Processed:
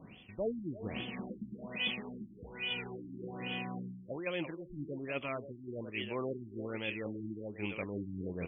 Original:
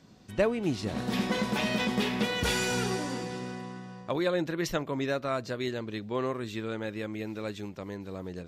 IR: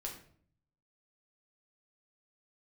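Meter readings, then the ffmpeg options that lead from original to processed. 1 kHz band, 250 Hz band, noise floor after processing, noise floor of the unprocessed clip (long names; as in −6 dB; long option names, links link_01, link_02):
−12.0 dB, −9.0 dB, −54 dBFS, −46 dBFS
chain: -filter_complex "[0:a]asplit=2[link_01][link_02];[link_02]adelay=340,highpass=300,lowpass=3400,asoftclip=type=hard:threshold=-23.5dB,volume=-8dB[link_03];[link_01][link_03]amix=inputs=2:normalize=0,aexciter=amount=14.7:drive=3.3:freq=2400,areverse,acompressor=threshold=-40dB:ratio=4,areverse,afftfilt=real='re*lt(b*sr/1024,340*pow(3500/340,0.5+0.5*sin(2*PI*1.2*pts/sr)))':imag='im*lt(b*sr/1024,340*pow(3500/340,0.5+0.5*sin(2*PI*1.2*pts/sr)))':win_size=1024:overlap=0.75,volume=7dB"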